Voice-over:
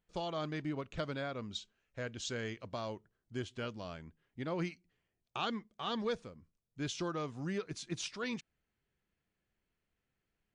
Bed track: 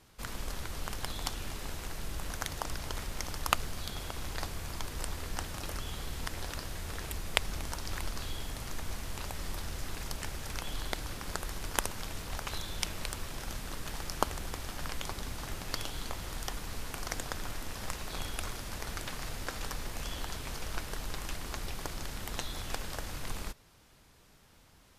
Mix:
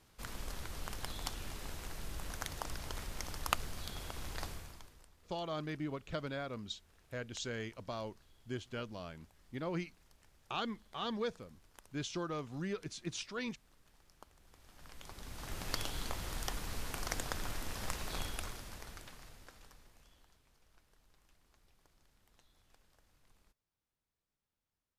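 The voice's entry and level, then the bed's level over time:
5.15 s, -1.5 dB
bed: 4.51 s -5 dB
5.11 s -28 dB
14.33 s -28 dB
15.64 s -1.5 dB
18.17 s -1.5 dB
20.46 s -31.5 dB

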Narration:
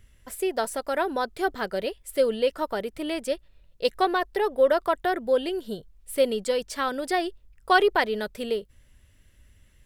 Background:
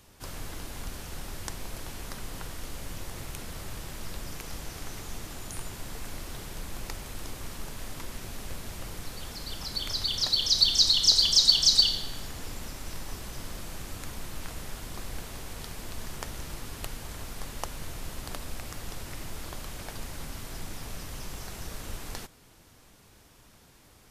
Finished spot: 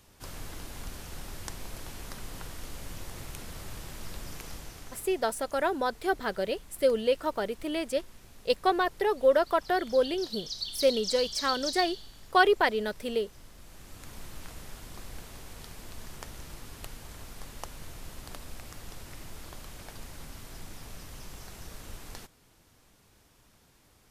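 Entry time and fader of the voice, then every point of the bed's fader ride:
4.65 s, -2.0 dB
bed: 4.46 s -2.5 dB
5.38 s -14 dB
13.55 s -14 dB
14.17 s -5.5 dB

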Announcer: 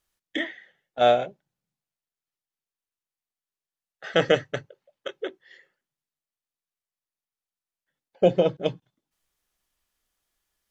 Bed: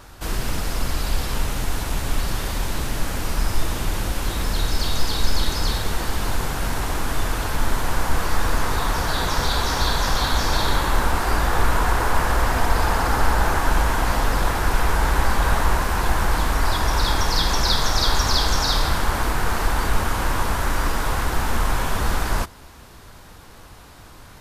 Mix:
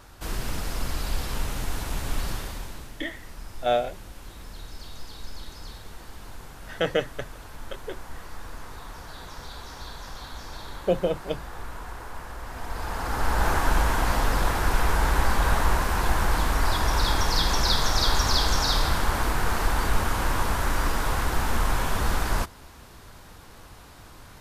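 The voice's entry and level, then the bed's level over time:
2.65 s, -4.5 dB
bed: 2.30 s -5.5 dB
2.98 s -18.5 dB
12.41 s -18.5 dB
13.48 s -3 dB

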